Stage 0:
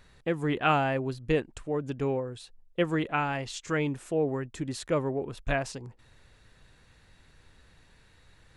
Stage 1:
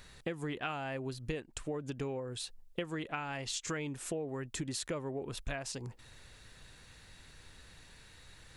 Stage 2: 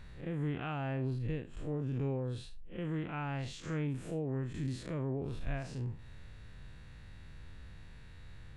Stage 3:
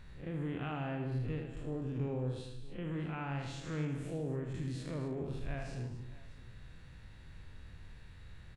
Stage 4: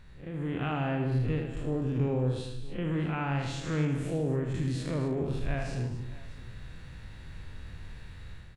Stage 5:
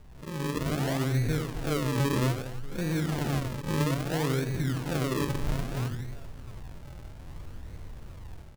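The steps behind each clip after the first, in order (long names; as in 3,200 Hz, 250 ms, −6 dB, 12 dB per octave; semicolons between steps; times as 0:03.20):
high-shelf EQ 2,800 Hz +8.5 dB; downward compressor 16 to 1, threshold −35 dBFS, peak gain reduction 18 dB; level +1 dB
spectrum smeared in time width 116 ms; bass and treble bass +10 dB, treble −12 dB
multi-tap delay 78/155/251/628 ms −6.5/−11.5/−12/−19 dB; level −2.5 dB
automatic gain control gain up to 8 dB
sample-and-hold swept by an LFO 42×, swing 100% 0.61 Hz; level +1.5 dB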